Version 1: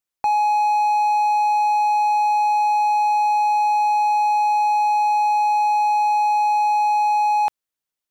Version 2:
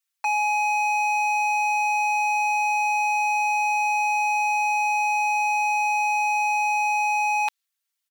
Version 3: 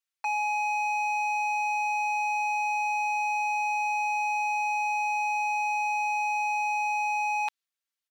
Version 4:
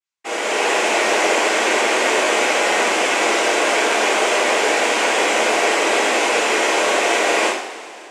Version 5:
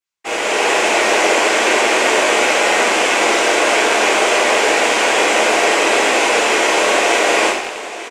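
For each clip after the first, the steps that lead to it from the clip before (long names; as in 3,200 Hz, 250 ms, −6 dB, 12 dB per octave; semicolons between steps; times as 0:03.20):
dynamic equaliser 3,900 Hz, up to +4 dB, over −47 dBFS, Q 1.2; high-pass filter 1,400 Hz 12 dB per octave; comb filter 4.4 ms, depth 100%; level +2 dB
high-shelf EQ 7,100 Hz −7.5 dB; level −5 dB
automatic gain control gain up to 7 dB; cochlear-implant simulation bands 4; coupled-rooms reverb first 0.55 s, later 3.1 s, from −17 dB, DRR −8.5 dB; level −5 dB
loose part that buzzes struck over −43 dBFS, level −18 dBFS; single-tap delay 887 ms −15.5 dB; level +3 dB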